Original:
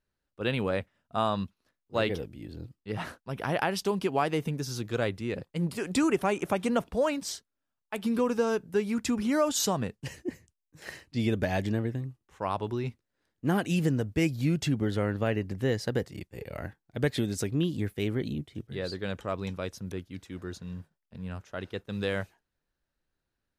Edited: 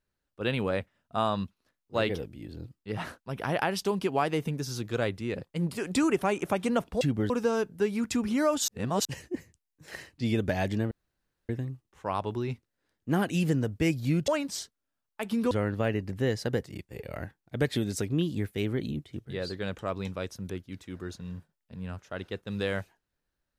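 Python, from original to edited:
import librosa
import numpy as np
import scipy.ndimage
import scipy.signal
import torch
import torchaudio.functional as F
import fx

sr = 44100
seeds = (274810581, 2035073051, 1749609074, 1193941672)

y = fx.edit(x, sr, fx.swap(start_s=7.01, length_s=1.23, other_s=14.64, other_length_s=0.29),
    fx.reverse_span(start_s=9.62, length_s=0.37),
    fx.insert_room_tone(at_s=11.85, length_s=0.58), tone=tone)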